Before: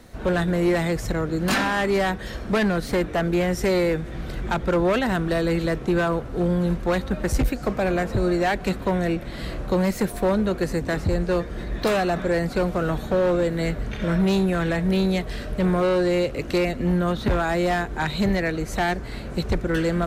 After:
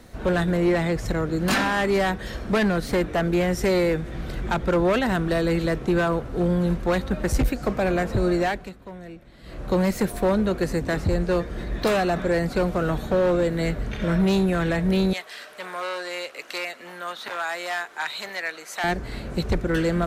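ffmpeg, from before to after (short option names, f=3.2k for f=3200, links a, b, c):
-filter_complex "[0:a]asettb=1/sr,asplit=3[a][b][c];[a]atrim=end=0.574[d];[b]atrim=start=0.57:end=1.06,asetpts=PTS-STARTPTS,afade=t=in:d=0.004:c=qsin,afade=t=out:st=0.486:d=0.004:c=qsin,highshelf=f=7k:g=-9[e];[c]atrim=start=1.056[f];[d][e]acrossfade=d=0.004:c1=hsin:c2=qsin[g];[g][f]acrossfade=d=0.004:c1=qsin:c2=hsin,asettb=1/sr,asplit=3[h][i][j];[h]atrim=end=15.134[k];[i]atrim=start=15.13:end=18.84,asetpts=PTS-STARTPTS,afade=t=in:d=0.004:c=qsin,afade=t=out:st=3.706:d=0.004:c=qsin,highpass=980[l];[j]atrim=start=18.836[m];[k][l]acrossfade=d=0.004:c1=hsin:c2=qsin[n];[n][m]acrossfade=d=0.004:c1=qsin:c2=hsin,asplit=3[o][p][q];[o]atrim=end=8.71,asetpts=PTS-STARTPTS,afade=t=out:st=8.4:d=0.31:silence=0.149624[r];[p]atrim=start=8.71:end=9.43,asetpts=PTS-STARTPTS,volume=-16.5dB[s];[q]atrim=start=9.43,asetpts=PTS-STARTPTS,afade=t=in:d=0.31:silence=0.149624[t];[r][s][t]concat=n=3:v=0:a=1"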